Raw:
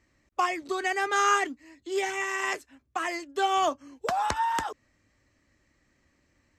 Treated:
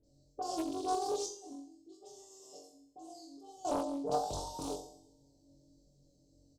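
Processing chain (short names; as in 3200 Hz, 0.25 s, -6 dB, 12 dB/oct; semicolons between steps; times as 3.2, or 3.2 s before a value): two-slope reverb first 0.67 s, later 2.1 s, from -25 dB, DRR 5 dB; limiter -19.5 dBFS, peak gain reduction 9 dB; elliptic band-stop 590–4500 Hz, stop band 50 dB; high shelf 11000 Hz -4 dB; negative-ratio compressor -34 dBFS, ratio -0.5; bell 1100 Hz +10 dB 0.5 oct; comb 6.8 ms, depth 58%; dispersion highs, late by 40 ms, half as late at 2600 Hz; 1.26–3.65 gate -29 dBFS, range -14 dB; flutter echo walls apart 3.7 m, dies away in 0.44 s; Doppler distortion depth 0.41 ms; gain -3 dB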